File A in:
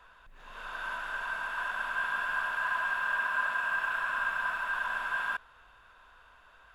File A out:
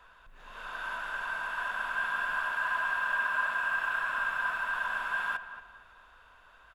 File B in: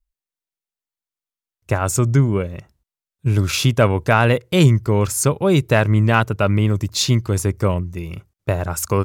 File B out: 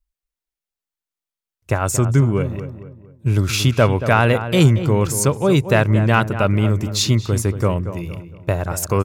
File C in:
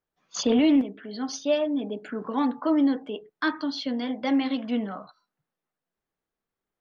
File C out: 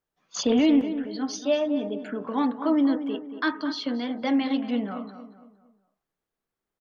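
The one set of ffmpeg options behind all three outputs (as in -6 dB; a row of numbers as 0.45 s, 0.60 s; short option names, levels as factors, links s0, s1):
-filter_complex "[0:a]asplit=2[s0][s1];[s1]adelay=230,lowpass=f=1900:p=1,volume=0.299,asplit=2[s2][s3];[s3]adelay=230,lowpass=f=1900:p=1,volume=0.4,asplit=2[s4][s5];[s5]adelay=230,lowpass=f=1900:p=1,volume=0.4,asplit=2[s6][s7];[s7]adelay=230,lowpass=f=1900:p=1,volume=0.4[s8];[s0][s2][s4][s6][s8]amix=inputs=5:normalize=0"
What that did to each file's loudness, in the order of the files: +0.5 LU, 0.0 LU, +0.5 LU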